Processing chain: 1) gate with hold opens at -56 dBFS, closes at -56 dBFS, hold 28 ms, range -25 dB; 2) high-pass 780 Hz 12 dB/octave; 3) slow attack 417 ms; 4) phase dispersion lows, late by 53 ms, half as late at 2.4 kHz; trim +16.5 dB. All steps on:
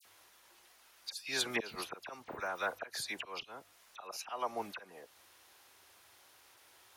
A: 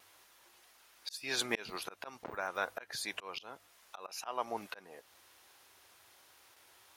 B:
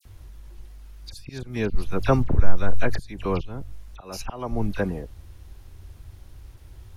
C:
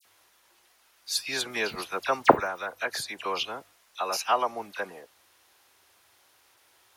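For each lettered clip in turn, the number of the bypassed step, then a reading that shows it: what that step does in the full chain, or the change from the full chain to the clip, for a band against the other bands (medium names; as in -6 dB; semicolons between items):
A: 4, crest factor change +4.0 dB; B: 2, 125 Hz band +27.0 dB; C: 3, crest factor change +6.5 dB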